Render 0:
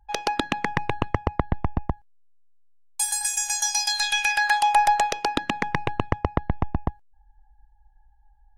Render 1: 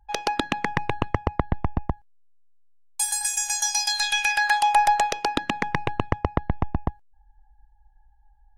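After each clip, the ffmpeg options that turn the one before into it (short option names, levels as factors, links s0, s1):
-af anull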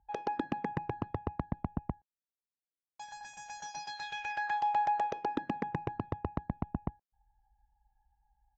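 -af "aresample=16000,asoftclip=type=tanh:threshold=0.15,aresample=44100,bandpass=f=280:t=q:w=0.51:csg=0,volume=0.708"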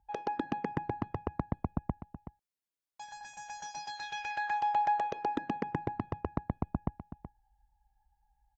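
-af "aecho=1:1:375:0.299"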